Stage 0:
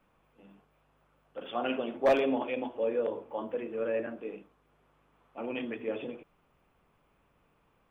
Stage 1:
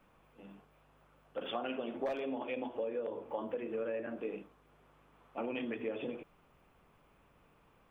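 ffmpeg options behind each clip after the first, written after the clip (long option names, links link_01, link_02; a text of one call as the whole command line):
ffmpeg -i in.wav -af "acompressor=threshold=-37dB:ratio=10,volume=3dB" out.wav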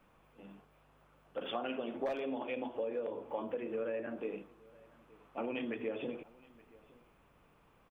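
ffmpeg -i in.wav -af "aecho=1:1:872:0.0668" out.wav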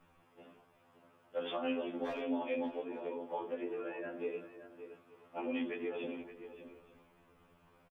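ffmpeg -i in.wav -filter_complex "[0:a]asplit=2[link_01][link_02];[link_02]adelay=571.4,volume=-11dB,highshelf=frequency=4000:gain=-12.9[link_03];[link_01][link_03]amix=inputs=2:normalize=0,afftfilt=real='re*2*eq(mod(b,4),0)':imag='im*2*eq(mod(b,4),0)':win_size=2048:overlap=0.75,volume=2dB" out.wav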